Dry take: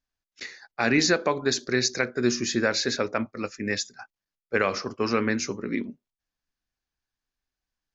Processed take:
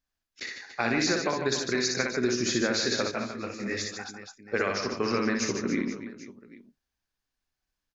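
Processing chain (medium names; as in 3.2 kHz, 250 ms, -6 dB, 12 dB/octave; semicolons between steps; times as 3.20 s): compression, threshold -24 dBFS, peak gain reduction 8 dB; reverse bouncing-ball echo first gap 60 ms, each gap 1.5×, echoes 5; 3.11–3.97 s: detune thickener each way 48 cents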